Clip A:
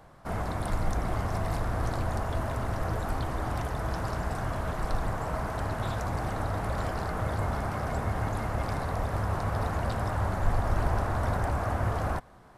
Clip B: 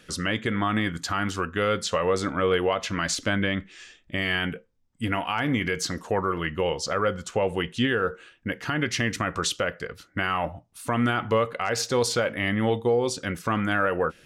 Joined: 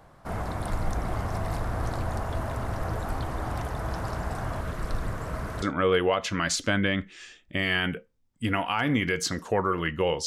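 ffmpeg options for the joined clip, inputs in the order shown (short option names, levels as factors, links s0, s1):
-filter_complex "[0:a]asettb=1/sr,asplit=3[s0][s1][s2];[s0]atrim=end=4.614[s3];[s1]atrim=start=4.61:end=5.62,asetpts=PTS-STARTPTS,afade=t=in:d=0.004:c=qsin,afade=t=out:st=1.006:d=0.004:c=qsin,equalizer=f=810:w=2.6:g=-9[s4];[s2]atrim=start=5.616[s5];[s3][s4]acrossfade=d=0.004:c1=hsin:c2=qsin[s6];[s6][s5]acrossfade=d=0.004:c1=qsin:c2=hsin,apad=whole_dur=10.26,atrim=end=10.26,atrim=end=5.622[s7];[1:a]atrim=start=2.208:end=6.85[s8];[s7][s8]acrossfade=d=0.004:c1=hsin:c2=hsin"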